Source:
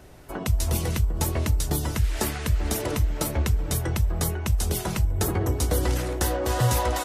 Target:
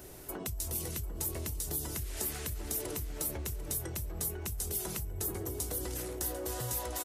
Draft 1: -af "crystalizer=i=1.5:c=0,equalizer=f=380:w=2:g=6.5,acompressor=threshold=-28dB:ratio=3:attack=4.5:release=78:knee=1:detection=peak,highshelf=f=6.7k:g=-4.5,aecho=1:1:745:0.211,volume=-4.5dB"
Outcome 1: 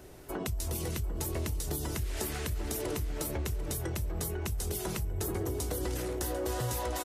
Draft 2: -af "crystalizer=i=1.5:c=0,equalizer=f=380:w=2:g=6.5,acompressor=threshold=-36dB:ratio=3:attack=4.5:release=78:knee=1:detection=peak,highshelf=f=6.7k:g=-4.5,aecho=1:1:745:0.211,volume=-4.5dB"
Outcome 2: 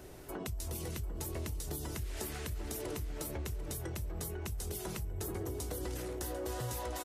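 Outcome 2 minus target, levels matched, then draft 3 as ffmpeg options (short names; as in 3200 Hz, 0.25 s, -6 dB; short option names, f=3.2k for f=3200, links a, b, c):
8000 Hz band -3.5 dB
-af "crystalizer=i=1.5:c=0,equalizer=f=380:w=2:g=6.5,acompressor=threshold=-36dB:ratio=3:attack=4.5:release=78:knee=1:detection=peak,highshelf=f=6.7k:g=7,aecho=1:1:745:0.211,volume=-4.5dB"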